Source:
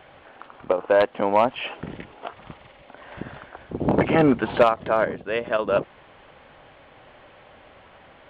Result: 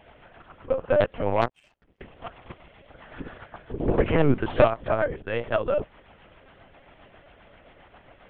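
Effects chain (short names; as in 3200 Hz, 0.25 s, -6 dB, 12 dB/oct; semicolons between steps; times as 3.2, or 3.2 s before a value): rotary speaker horn 7.5 Hz; LPC vocoder at 8 kHz pitch kept; 1.41–2.01 power-law curve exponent 2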